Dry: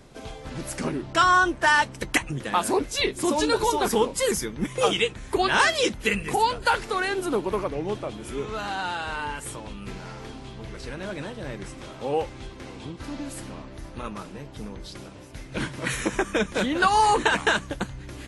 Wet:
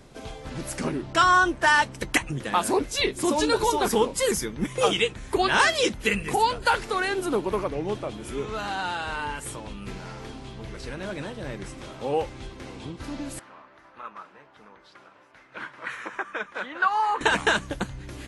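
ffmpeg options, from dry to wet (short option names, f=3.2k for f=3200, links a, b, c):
-filter_complex "[0:a]asettb=1/sr,asplit=3[a][b][c];[a]atrim=end=13.394[d];[b]atrim=start=13.39:end=17.21,asetpts=PTS-STARTPTS,afade=t=in:d=0.004:c=qsin,afade=t=out:st=3.816:d=0.004:c=qsin,bandpass=f=1.3k:t=q:w=1.6[e];[c]atrim=start=17.206[f];[d][e]acrossfade=d=0.004:c1=hsin:c2=qsin[g];[g][f]acrossfade=d=0.004:c1=qsin:c2=hsin"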